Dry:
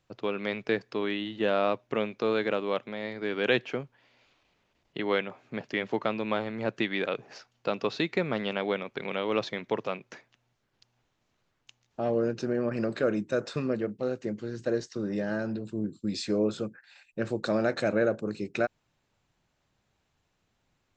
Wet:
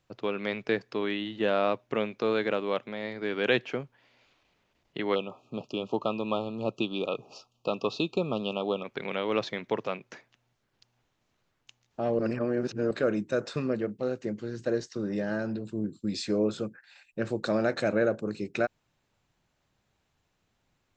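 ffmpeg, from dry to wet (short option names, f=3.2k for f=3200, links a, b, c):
-filter_complex "[0:a]asplit=3[a][b][c];[a]afade=t=out:st=5.14:d=0.02[d];[b]asuperstop=centerf=1800:order=20:qfactor=1.6,afade=t=in:st=5.14:d=0.02,afade=t=out:st=8.83:d=0.02[e];[c]afade=t=in:st=8.83:d=0.02[f];[d][e][f]amix=inputs=3:normalize=0,asplit=3[g][h][i];[g]atrim=end=12.192[j];[h]atrim=start=12.188:end=12.912,asetpts=PTS-STARTPTS,areverse[k];[i]atrim=start=12.908[l];[j][k]acrossfade=d=0.004:c1=hsin:c2=hsin[m];[m][l]acrossfade=d=0.004:c1=hsin:c2=hsin"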